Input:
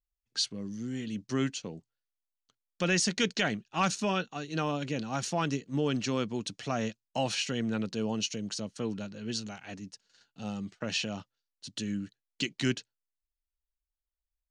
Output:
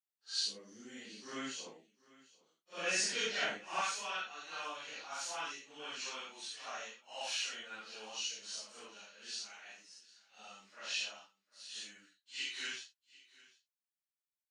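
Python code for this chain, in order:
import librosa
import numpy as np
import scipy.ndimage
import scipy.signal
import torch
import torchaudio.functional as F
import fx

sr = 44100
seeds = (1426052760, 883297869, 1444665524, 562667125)

y = fx.phase_scramble(x, sr, seeds[0], window_ms=200)
y = fx.highpass(y, sr, hz=fx.steps((0.0, 540.0), (3.81, 1100.0)), slope=12)
y = y + 10.0 ** (-21.5 / 20.0) * np.pad(y, (int(745 * sr / 1000.0), 0))[:len(y)]
y = y * 10.0 ** (-4.0 / 20.0)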